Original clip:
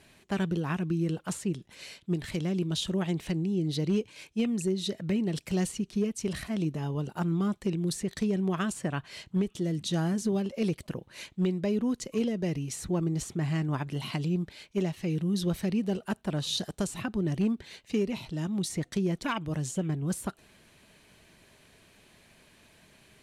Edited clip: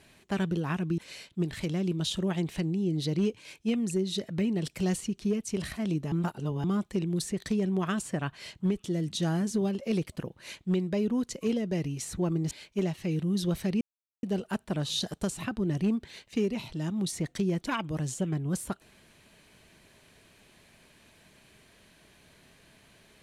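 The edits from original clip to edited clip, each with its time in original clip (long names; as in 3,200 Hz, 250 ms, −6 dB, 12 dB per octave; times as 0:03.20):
0:00.98–0:01.69: remove
0:06.83–0:07.35: reverse
0:13.22–0:14.50: remove
0:15.80: splice in silence 0.42 s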